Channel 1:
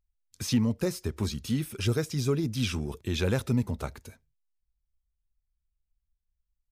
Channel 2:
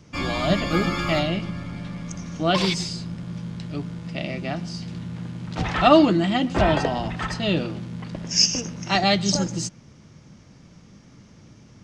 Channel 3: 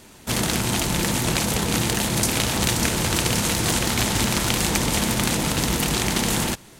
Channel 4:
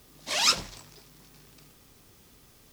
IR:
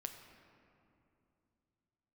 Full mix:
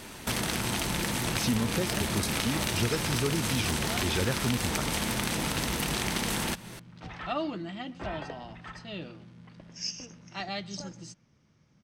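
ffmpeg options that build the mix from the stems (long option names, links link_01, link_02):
-filter_complex "[0:a]adelay=950,volume=1dB[link_01];[1:a]adelay=1450,volume=-17.5dB[link_02];[2:a]acompressor=threshold=-33dB:ratio=2.5,volume=1dB,asplit=2[link_03][link_04];[link_04]volume=-12dB[link_05];[3:a]adelay=2450,volume=-14dB[link_06];[4:a]atrim=start_sample=2205[link_07];[link_05][link_07]afir=irnorm=-1:irlink=0[link_08];[link_01][link_02][link_03][link_06][link_08]amix=inputs=5:normalize=0,equalizer=frequency=1800:width_type=o:width=2.2:gain=3.5,bandreject=frequency=7000:width=13,acompressor=threshold=-27dB:ratio=2"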